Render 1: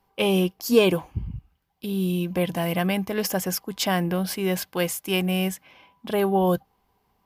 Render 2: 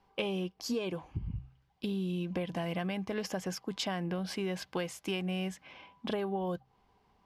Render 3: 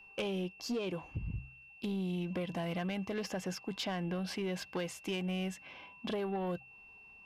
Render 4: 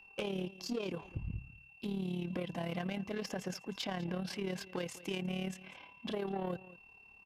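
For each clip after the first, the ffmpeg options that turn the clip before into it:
-af "acompressor=threshold=0.0282:ratio=12,lowpass=5900,bandreject=f=65.16:t=h:w=4,bandreject=f=130.32:t=h:w=4"
-filter_complex "[0:a]acrossover=split=5400[s0][s1];[s1]alimiter=level_in=6.68:limit=0.0631:level=0:latency=1:release=269,volume=0.15[s2];[s0][s2]amix=inputs=2:normalize=0,aeval=exprs='val(0)+0.002*sin(2*PI*2700*n/s)':c=same,asoftclip=type=tanh:threshold=0.0355"
-af "tremolo=f=36:d=0.621,aecho=1:1:198:0.119,volume=1.12"

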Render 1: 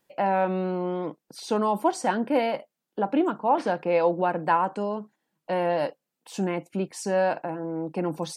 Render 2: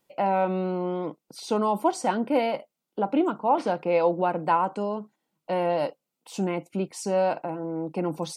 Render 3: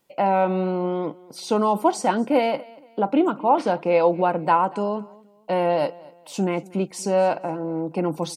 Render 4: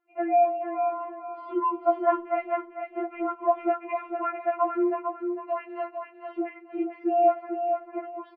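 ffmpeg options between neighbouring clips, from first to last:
-af "bandreject=f=1700:w=5.1"
-af "aecho=1:1:236|472:0.075|0.0255,volume=1.58"
-af "aecho=1:1:450|900|1350:0.501|0.13|0.0339,highpass=f=260:t=q:w=0.5412,highpass=f=260:t=q:w=1.307,lowpass=f=2300:t=q:w=0.5176,lowpass=f=2300:t=q:w=0.7071,lowpass=f=2300:t=q:w=1.932,afreqshift=-56,afftfilt=real='re*4*eq(mod(b,16),0)':imag='im*4*eq(mod(b,16),0)':win_size=2048:overlap=0.75,volume=0.841"

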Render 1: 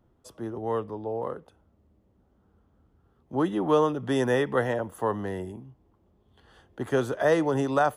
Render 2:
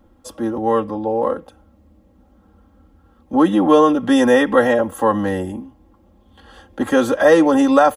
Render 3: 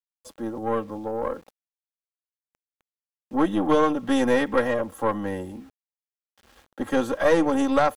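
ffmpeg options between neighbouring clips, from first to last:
-filter_complex "[0:a]aecho=1:1:3.7:0.94,asplit=2[s0][s1];[s1]alimiter=limit=0.112:level=0:latency=1,volume=0.794[s2];[s0][s2]amix=inputs=2:normalize=0,volume=1.78"
-af "aeval=exprs='val(0)*gte(abs(val(0)),0.00944)':c=same,aeval=exprs='0.891*(cos(1*acos(clip(val(0)/0.891,-1,1)))-cos(1*PI/2))+0.112*(cos(4*acos(clip(val(0)/0.891,-1,1)))-cos(4*PI/2))+0.0224*(cos(7*acos(clip(val(0)/0.891,-1,1)))-cos(7*PI/2))':c=same,volume=0.398"

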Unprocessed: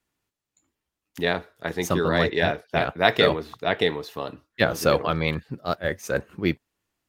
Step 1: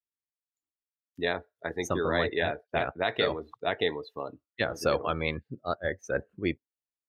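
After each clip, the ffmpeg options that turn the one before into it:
-af "afftdn=nr=25:nf=-34,equalizer=f=170:w=2.3:g=-6.5,alimiter=limit=0.335:level=0:latency=1:release=224,volume=0.631"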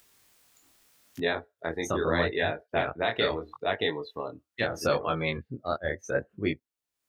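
-filter_complex "[0:a]asplit=2[s0][s1];[s1]acompressor=mode=upward:threshold=0.0355:ratio=2.5,volume=1.33[s2];[s0][s2]amix=inputs=2:normalize=0,flanger=delay=19:depth=7.4:speed=0.78,volume=0.668"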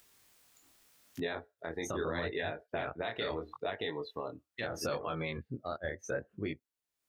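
-af "alimiter=limit=0.075:level=0:latency=1:release=133,volume=0.75"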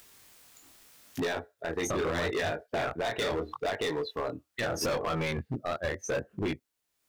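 -af "asoftclip=type=hard:threshold=0.0178,volume=2.66"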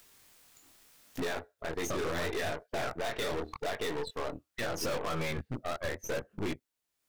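-af "aeval=exprs='0.0501*(cos(1*acos(clip(val(0)/0.0501,-1,1)))-cos(1*PI/2))+0.0141*(cos(4*acos(clip(val(0)/0.0501,-1,1)))-cos(4*PI/2))':c=same,volume=0.631"

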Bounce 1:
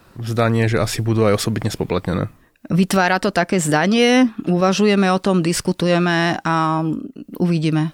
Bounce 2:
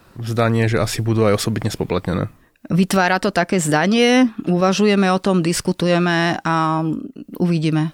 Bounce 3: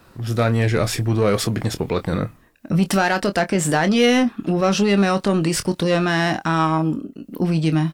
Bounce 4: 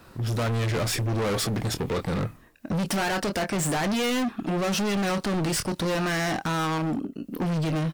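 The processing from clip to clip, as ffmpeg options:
-af anull
-filter_complex "[0:a]aeval=exprs='0.668*(cos(1*acos(clip(val(0)/0.668,-1,1)))-cos(1*PI/2))+0.0473*(cos(5*acos(clip(val(0)/0.668,-1,1)))-cos(5*PI/2))':c=same,asplit=2[s0][s1];[s1]adelay=25,volume=0.299[s2];[s0][s2]amix=inputs=2:normalize=0,volume=0.668"
-af "asoftclip=type=hard:threshold=0.0631"

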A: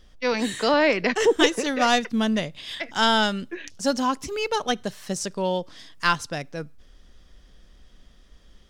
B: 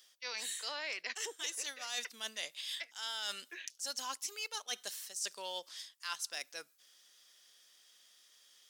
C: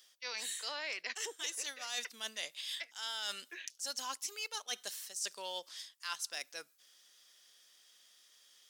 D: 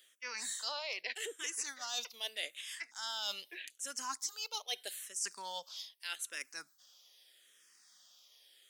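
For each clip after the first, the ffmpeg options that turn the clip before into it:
-af "highpass=340,aderivative,areverse,acompressor=threshold=0.00794:ratio=10,areverse,volume=1.88"
-af anull
-filter_complex "[0:a]asplit=2[s0][s1];[s1]afreqshift=-0.81[s2];[s0][s2]amix=inputs=2:normalize=1,volume=1.41"

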